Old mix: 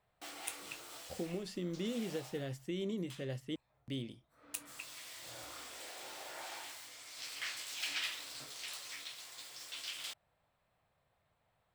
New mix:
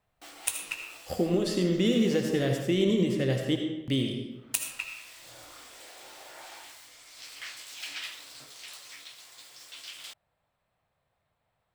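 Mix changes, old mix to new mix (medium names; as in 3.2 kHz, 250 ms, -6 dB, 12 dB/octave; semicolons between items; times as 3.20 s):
speech +10.0 dB; reverb: on, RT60 1.0 s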